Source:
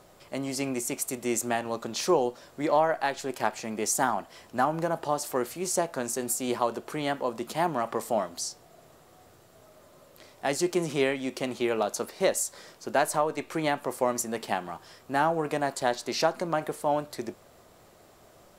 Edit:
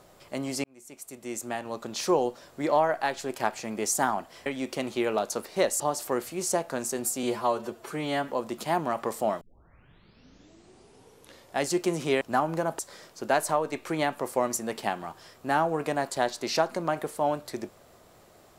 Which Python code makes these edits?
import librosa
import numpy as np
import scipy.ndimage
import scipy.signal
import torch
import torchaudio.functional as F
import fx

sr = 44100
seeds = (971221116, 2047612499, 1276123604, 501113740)

y = fx.edit(x, sr, fx.fade_in_span(start_s=0.64, length_s=1.56),
    fx.swap(start_s=4.46, length_s=0.58, other_s=11.1, other_length_s=1.34),
    fx.stretch_span(start_s=6.47, length_s=0.7, factor=1.5),
    fx.tape_start(start_s=8.3, length_s=2.19), tone=tone)